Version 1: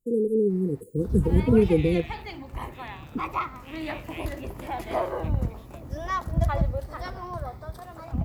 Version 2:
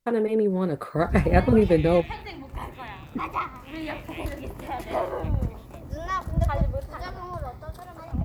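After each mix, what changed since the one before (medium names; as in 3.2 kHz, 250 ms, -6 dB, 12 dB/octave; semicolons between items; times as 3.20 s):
first voice: remove brick-wall FIR band-stop 510–6600 Hz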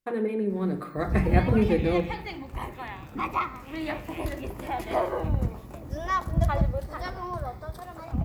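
first voice -9.5 dB; second voice -7.0 dB; reverb: on, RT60 0.70 s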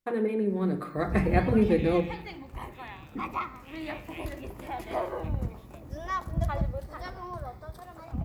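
background -5.0 dB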